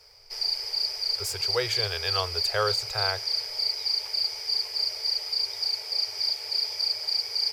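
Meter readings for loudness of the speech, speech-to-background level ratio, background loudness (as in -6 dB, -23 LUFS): -31.0 LUFS, -5.0 dB, -26.0 LUFS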